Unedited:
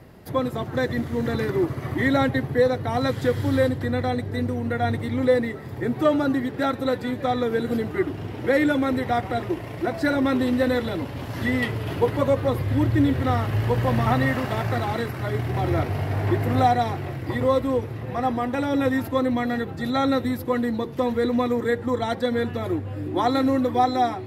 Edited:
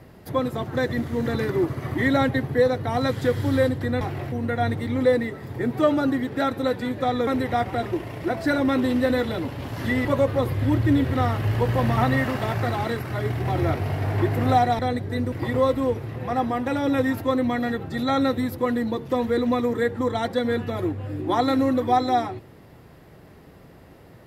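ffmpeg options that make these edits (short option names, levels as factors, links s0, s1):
-filter_complex "[0:a]asplit=7[s0][s1][s2][s3][s4][s5][s6];[s0]atrim=end=4.012[s7];[s1]atrim=start=16.878:end=17.192[s8];[s2]atrim=start=4.538:end=7.492[s9];[s3]atrim=start=8.838:end=11.622[s10];[s4]atrim=start=12.138:end=16.882[s11];[s5]atrim=start=4.008:end=4.542[s12];[s6]atrim=start=17.188[s13];[s7][s8]acrossfade=d=0.004:c1=hsin:c2=hsin[s14];[s14][s9]acrossfade=d=0.004:c1=hsin:c2=hsin[s15];[s15][s10]acrossfade=d=0.004:c1=hsin:c2=hsin[s16];[s16][s11]acrossfade=d=0.004:c1=hsin:c2=hsin[s17];[s17][s12]acrossfade=d=0.004:c1=hsin:c2=hsin[s18];[s18][s13]acrossfade=d=0.004:c1=hsin:c2=hsin"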